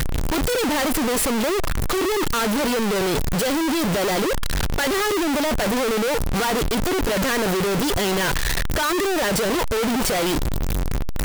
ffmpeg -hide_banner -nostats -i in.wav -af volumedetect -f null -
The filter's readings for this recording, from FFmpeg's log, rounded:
mean_volume: -20.8 dB
max_volume: -20.8 dB